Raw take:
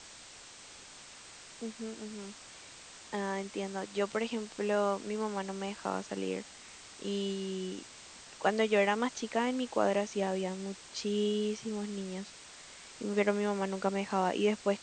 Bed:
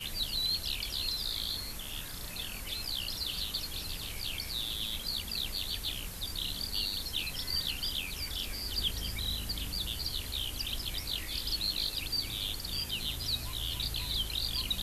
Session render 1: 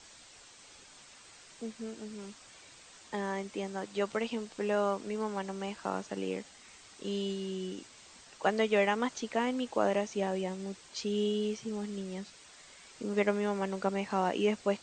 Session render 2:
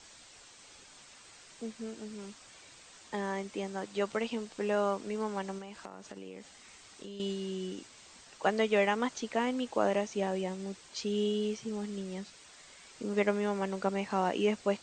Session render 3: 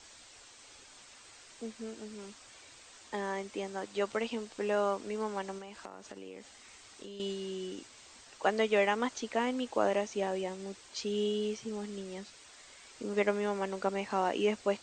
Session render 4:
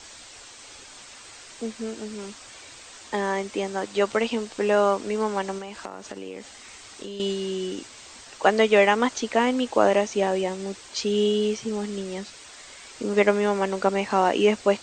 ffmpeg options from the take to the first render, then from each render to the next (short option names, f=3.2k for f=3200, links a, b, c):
-af "afftdn=nr=6:nf=-52"
-filter_complex "[0:a]asettb=1/sr,asplit=3[a][b][c];[a]atrim=end=5.584[d];[b]atrim=start=5.58:end=7.2,asetpts=PTS-STARTPTS,afade=t=in:d=0.004:c=qsin,afade=t=out:st=1.616:d=0.004:c=qsin,acompressor=threshold=-40dB:ratio=16:attack=3.2:release=140:knee=1:detection=peak[e];[c]atrim=start=7.196[f];[d][e]acrossfade=d=0.004:c1=hsin:c2=qsin[g];[g][f]acrossfade=d=0.004:c1=qsin:c2=hsin"
-af "equalizer=f=170:w=3.7:g=-10"
-af "volume=10dB"